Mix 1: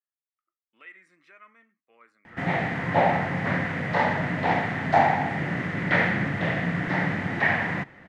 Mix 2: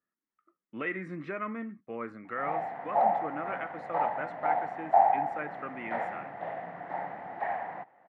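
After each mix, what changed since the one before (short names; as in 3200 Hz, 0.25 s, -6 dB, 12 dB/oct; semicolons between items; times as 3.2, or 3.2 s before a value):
speech: remove differentiator; background: add band-pass 760 Hz, Q 4.2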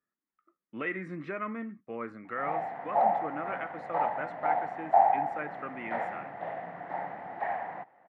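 none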